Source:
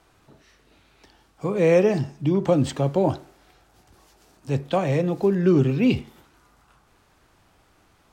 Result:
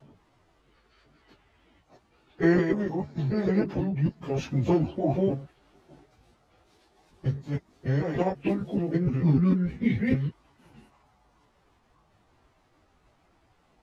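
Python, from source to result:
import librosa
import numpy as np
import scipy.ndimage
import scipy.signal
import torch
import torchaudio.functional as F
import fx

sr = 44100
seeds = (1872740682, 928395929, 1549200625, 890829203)

y = fx.block_reorder(x, sr, ms=89.0, group=4)
y = fx.high_shelf(y, sr, hz=6700.0, db=-8.5)
y = fx.stretch_vocoder_free(y, sr, factor=1.7)
y = fx.vibrato(y, sr, rate_hz=2.0, depth_cents=35.0)
y = fx.formant_shift(y, sr, semitones=-4)
y = y * 10.0 ** (-1.5 / 20.0)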